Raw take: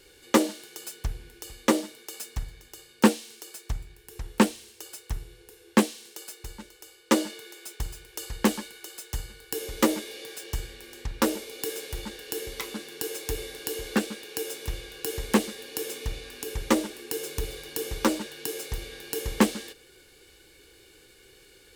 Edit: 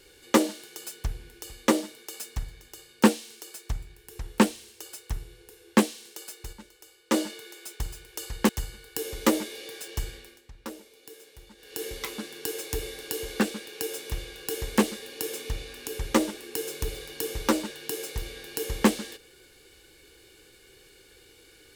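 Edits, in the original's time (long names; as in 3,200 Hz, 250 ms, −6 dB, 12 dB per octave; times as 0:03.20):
0:06.53–0:07.14: clip gain −4 dB
0:08.49–0:09.05: remove
0:10.70–0:12.41: duck −15 dB, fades 0.28 s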